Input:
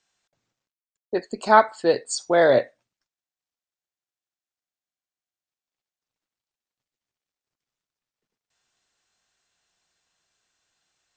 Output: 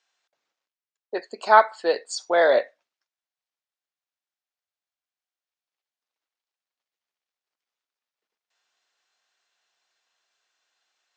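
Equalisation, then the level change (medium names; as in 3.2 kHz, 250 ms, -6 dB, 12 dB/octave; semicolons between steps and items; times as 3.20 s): band-pass 520–5500 Hz; +1.0 dB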